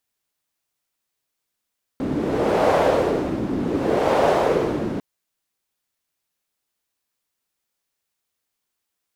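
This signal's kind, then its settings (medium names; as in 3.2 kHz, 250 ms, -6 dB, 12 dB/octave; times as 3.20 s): wind-like swept noise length 3.00 s, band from 260 Hz, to 610 Hz, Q 2.1, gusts 2, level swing 7 dB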